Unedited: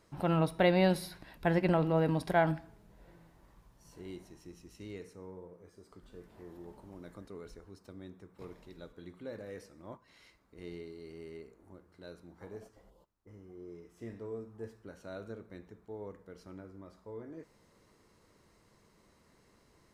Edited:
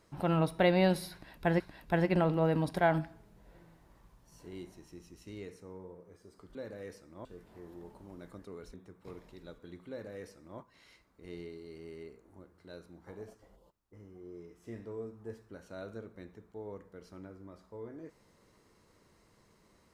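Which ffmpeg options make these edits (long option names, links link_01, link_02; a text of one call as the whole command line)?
ffmpeg -i in.wav -filter_complex "[0:a]asplit=5[link_01][link_02][link_03][link_04][link_05];[link_01]atrim=end=1.602[link_06];[link_02]atrim=start=1.128:end=6.082[link_07];[link_03]atrim=start=9.228:end=9.932[link_08];[link_04]atrim=start=6.078:end=7.572[link_09];[link_05]atrim=start=8.078[link_10];[link_06][link_07]acrossfade=duration=0.004:curve1=hsin:curve2=hsin[link_11];[link_11][link_08]acrossfade=duration=0.004:curve1=hsin:curve2=hsin[link_12];[link_12][link_09]acrossfade=duration=0.004:curve1=hsin:curve2=hsin[link_13];[link_13][link_10]acrossfade=duration=0.004:curve1=hsin:curve2=hsin" out.wav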